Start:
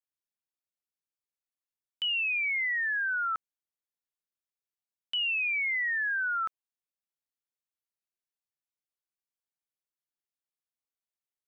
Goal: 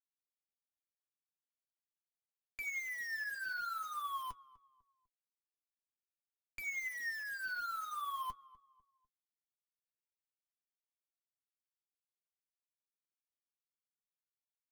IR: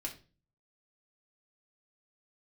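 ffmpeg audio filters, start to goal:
-filter_complex "[0:a]lowshelf=f=99:g=4,aecho=1:1:2.2:0.59,asubboost=boost=11:cutoff=170,acompressor=threshold=0.0316:ratio=16,asetrate=34398,aresample=44100,asoftclip=type=tanh:threshold=0.0133,acrusher=bits=7:mix=0:aa=0.000001,flanger=delay=8:depth=7.6:regen=47:speed=0.47:shape=sinusoidal,asplit=2[s0][s1];[s1]adelay=249,lowpass=f=1500:p=1,volume=0.112,asplit=2[s2][s3];[s3]adelay=249,lowpass=f=1500:p=1,volume=0.4,asplit=2[s4][s5];[s5]adelay=249,lowpass=f=1500:p=1,volume=0.4[s6];[s0][s2][s4][s6]amix=inputs=4:normalize=0,volume=1.19"

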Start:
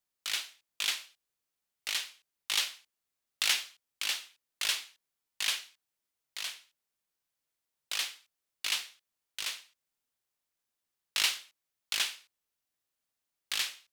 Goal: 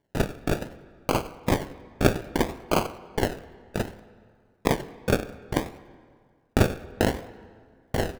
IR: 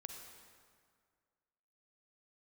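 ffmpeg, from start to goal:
-filter_complex "[0:a]lowpass=9100,asplit=2[s0][s1];[s1]acompressor=threshold=0.00794:ratio=4,volume=1.26[s2];[s0][s2]amix=inputs=2:normalize=0,asplit=2[s3][s4];[s4]adelay=159,lowpass=f=1000:p=1,volume=0.562,asplit=2[s5][s6];[s6]adelay=159,lowpass=f=1000:p=1,volume=0.48,asplit=2[s7][s8];[s8]adelay=159,lowpass=f=1000:p=1,volume=0.48,asplit=2[s9][s10];[s10]adelay=159,lowpass=f=1000:p=1,volume=0.48,asplit=2[s11][s12];[s12]adelay=159,lowpass=f=1000:p=1,volume=0.48,asplit=2[s13][s14];[s14]adelay=159,lowpass=f=1000:p=1,volume=0.48[s15];[s3][s5][s7][s9][s11][s13][s15]amix=inputs=7:normalize=0,aeval=exprs='val(0)*sin(2*PI*360*n/s)':c=same,atempo=1.7,acrusher=samples=34:mix=1:aa=0.000001:lfo=1:lforange=20.4:lforate=0.63,asplit=2[s16][s17];[1:a]atrim=start_sample=2205,lowpass=3500[s18];[s17][s18]afir=irnorm=-1:irlink=0,volume=0.531[s19];[s16][s19]amix=inputs=2:normalize=0,volume=2.82"

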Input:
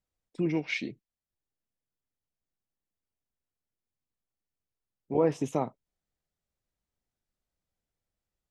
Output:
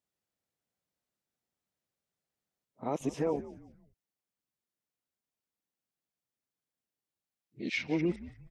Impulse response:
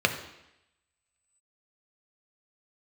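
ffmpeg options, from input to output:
-filter_complex "[0:a]areverse,highpass=140,alimiter=limit=0.0841:level=0:latency=1:release=161,asplit=4[s0][s1][s2][s3];[s1]adelay=177,afreqshift=-100,volume=0.158[s4];[s2]adelay=354,afreqshift=-200,volume=0.0589[s5];[s3]adelay=531,afreqshift=-300,volume=0.0216[s6];[s0][s4][s5][s6]amix=inputs=4:normalize=0"

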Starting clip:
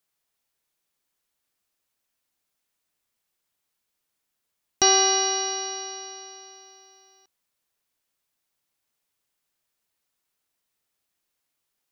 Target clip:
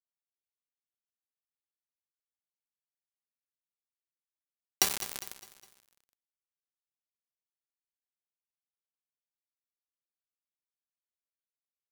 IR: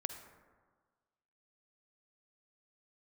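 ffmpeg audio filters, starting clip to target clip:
-filter_complex "[0:a]highpass=290,aemphasis=mode=production:type=50kf,acompressor=threshold=0.0316:ratio=5,acrusher=bits=3:mix=0:aa=0.000001,asplit=2[s0][s1];[s1]aecho=0:1:204|408|612|816:0.178|0.0836|0.0393|0.0185[s2];[s0][s2]amix=inputs=2:normalize=0,volume=1.5"

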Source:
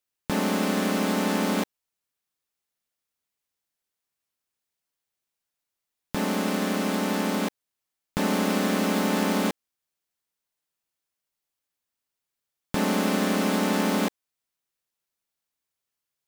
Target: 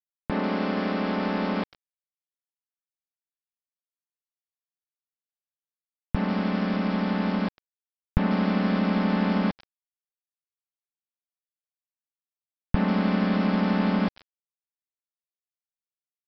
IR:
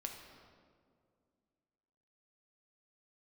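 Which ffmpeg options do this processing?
-filter_complex "[0:a]asubboost=boost=9:cutoff=110,acrossover=split=3400[s0][s1];[s1]adelay=140[s2];[s0][s2]amix=inputs=2:normalize=0,aresample=11025,aeval=exprs='val(0)*gte(abs(val(0)),0.0224)':c=same,aresample=44100,highshelf=f=3800:g=-8.5"

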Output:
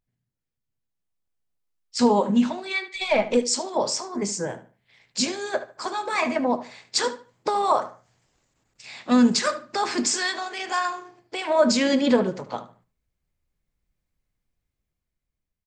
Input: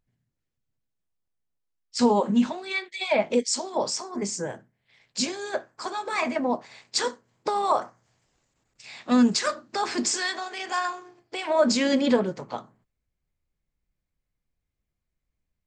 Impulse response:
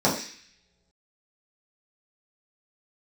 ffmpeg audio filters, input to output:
-filter_complex "[0:a]dynaudnorm=f=240:g=9:m=2.51,asettb=1/sr,asplit=3[s0][s1][s2];[s0]atrim=end=2.934[s3];[s1]atrim=start=2.93:end=3.37,asetpts=PTS-STARTPTS,afade=t=in:d=0.004:c=qsin,afade=t=out:st=0.436:d=0.004:c=qsin,aeval=exprs='0.596*(cos(1*acos(clip(val(0)/0.596,-1,1)))-cos(1*PI/2))+0.0211*(cos(6*acos(clip(val(0)/0.596,-1,1)))-cos(6*PI/2))':c=same[s4];[s2]atrim=start=3.366[s5];[s3][s4]acrossfade=d=0.004:c1=hsin:c2=qsin[s6];[s6][s5]acrossfade=d=0.004:c1=qsin:c2=hsin,asplit=2[s7][s8];[s8]adelay=74,lowpass=f=4400:p=1,volume=0.2,asplit=2[s9][s10];[s10]adelay=74,lowpass=f=4400:p=1,volume=0.28,asplit=2[s11][s12];[s12]adelay=74,lowpass=f=4400:p=1,volume=0.28[s13];[s7][s9][s11][s13]amix=inputs=4:normalize=0,volume=0.562"

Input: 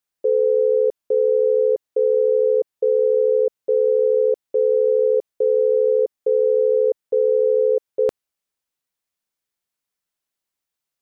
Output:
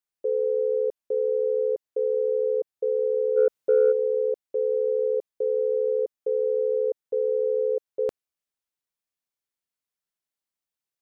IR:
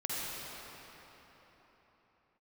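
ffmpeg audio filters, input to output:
-filter_complex "[0:a]asplit=3[s0][s1][s2];[s0]afade=t=out:st=3.36:d=0.02[s3];[s1]acontrast=77,afade=t=in:st=3.36:d=0.02,afade=t=out:st=3.91:d=0.02[s4];[s2]afade=t=in:st=3.91:d=0.02[s5];[s3][s4][s5]amix=inputs=3:normalize=0,volume=0.447"

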